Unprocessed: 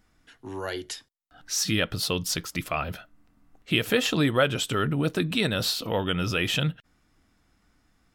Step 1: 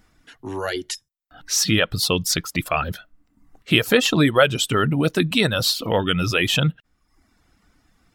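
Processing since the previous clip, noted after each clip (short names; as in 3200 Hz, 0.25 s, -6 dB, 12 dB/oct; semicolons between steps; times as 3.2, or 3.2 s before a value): spectral gain 0.95–1.2, 210–5100 Hz -15 dB; reverb removal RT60 0.75 s; gain +7 dB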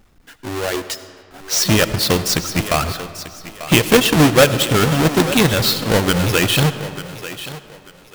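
half-waves squared off; thinning echo 0.891 s, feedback 27%, high-pass 260 Hz, level -13 dB; digital reverb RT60 2.2 s, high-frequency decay 0.6×, pre-delay 35 ms, DRR 12 dB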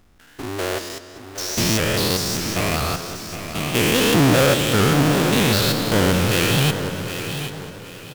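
stepped spectrum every 0.2 s; feedback echo 0.764 s, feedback 30%, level -11 dB; shaped vibrato saw up 5 Hz, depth 100 cents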